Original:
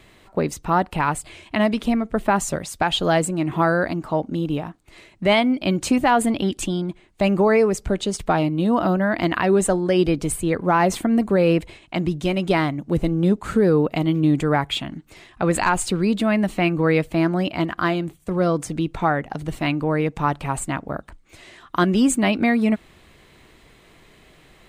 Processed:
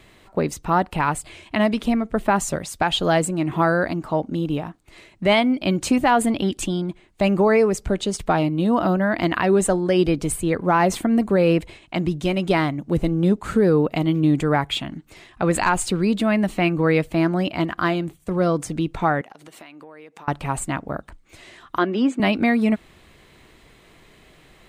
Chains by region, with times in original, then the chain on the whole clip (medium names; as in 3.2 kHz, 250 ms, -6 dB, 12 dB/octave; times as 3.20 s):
19.21–20.28 s: high-pass 310 Hz + bass shelf 480 Hz -5.5 dB + compression 8:1, threshold -39 dBFS
21.78–22.20 s: high-pass 240 Hz 24 dB/octave + distance through air 200 m
whole clip: none